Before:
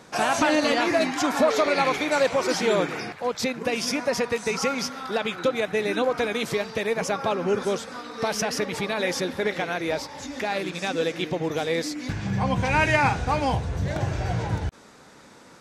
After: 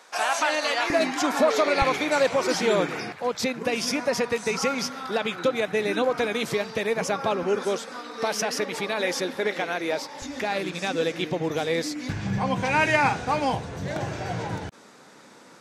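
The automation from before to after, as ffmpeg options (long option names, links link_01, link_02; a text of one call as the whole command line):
ffmpeg -i in.wav -af "asetnsamples=nb_out_samples=441:pad=0,asendcmd='0.9 highpass f 200;1.82 highpass f 83;7.43 highpass f 230;10.22 highpass f 62;12.38 highpass f 160',highpass=680" out.wav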